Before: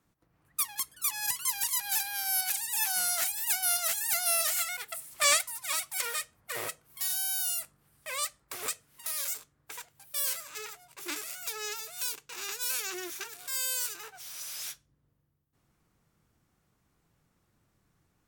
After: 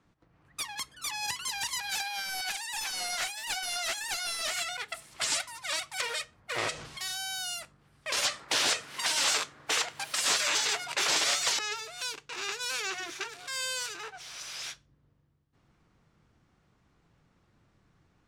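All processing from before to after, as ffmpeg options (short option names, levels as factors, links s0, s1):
-filter_complex "[0:a]asettb=1/sr,asplit=3[s0][s1][s2];[s0]atrim=end=2.014[s3];[s1]atrim=start=2.01:end=4.54,asetpts=PTS-STARTPTS,afade=t=in:d=0.004:c=qsin,afade=t=out:st=2.526:d=0.004:c=qsin,highpass=f=280:w=0.5412,highpass=f=280:w=1.3066,volume=14.1,asoftclip=hard,volume=0.0708[s4];[s2]atrim=start=4.536[s5];[s3][s4]acrossfade=d=0.004:c1=hsin:c2=qsin[s6];[s6][s5]acrossfade=d=0.004:c1=qsin:c2=hsin,asettb=1/sr,asplit=3[s7][s8][s9];[s7]atrim=end=6.584[s10];[s8]atrim=start=6.58:end=6.99,asetpts=PTS-STARTPTS,afade=t=in:d=0.004:c=qsin,afade=t=out:st=0.406:d=0.004:c=qsin,aeval=exprs='val(0)+0.5*0.00668*sgn(val(0))':c=same,lowpass=7600,highshelf=f=4100:g=8.5[s11];[s9]atrim=start=6.986[s12];[s10][s11]acrossfade=d=0.004:c1=hsin:c2=qsin[s13];[s13][s12]acrossfade=d=0.004:c1=qsin:c2=hsin,asettb=1/sr,asplit=3[s14][s15][s16];[s14]atrim=end=8.124[s17];[s15]atrim=start=8.12:end=11.59,asetpts=PTS-STARTPTS,afade=t=in:d=0.004:c=qsin,afade=t=out:st=3.466:d=0.004:c=qsin,acrossover=split=7800[s18][s19];[s19]acompressor=threshold=0.00501:ratio=4:attack=1:release=60[s20];[s18][s20]amix=inputs=2:normalize=0,aeval=exprs='0.112*sin(PI/2*7.08*val(0)/0.112)':c=same,highpass=f=740:p=1[s21];[s16]atrim=start=11.586[s22];[s17][s21]acrossfade=d=0.004:c1=hsin:c2=qsin[s23];[s23][s22]acrossfade=d=0.004:c1=qsin:c2=hsin,lowpass=4800,afftfilt=real='re*lt(hypot(re,im),0.0794)':imag='im*lt(hypot(re,im),0.0794)':win_size=1024:overlap=0.75,volume=1.88"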